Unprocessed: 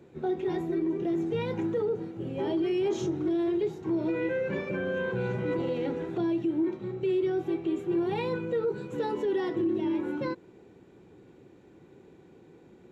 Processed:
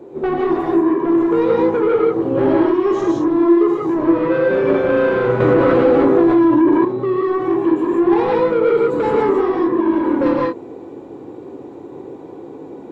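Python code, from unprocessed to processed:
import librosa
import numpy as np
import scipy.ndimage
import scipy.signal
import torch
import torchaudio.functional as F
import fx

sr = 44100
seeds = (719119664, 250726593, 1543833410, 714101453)

y = fx.band_shelf(x, sr, hz=540.0, db=13.0, octaves=2.5)
y = fx.rider(y, sr, range_db=10, speed_s=0.5)
y = 10.0 ** (-16.5 / 20.0) * np.tanh(y / 10.0 ** (-16.5 / 20.0))
y = fx.rev_gated(y, sr, seeds[0], gate_ms=200, shape='rising', drr_db=-2.5)
y = fx.env_flatten(y, sr, amount_pct=70, at=(5.4, 6.85))
y = y * librosa.db_to_amplitude(2.0)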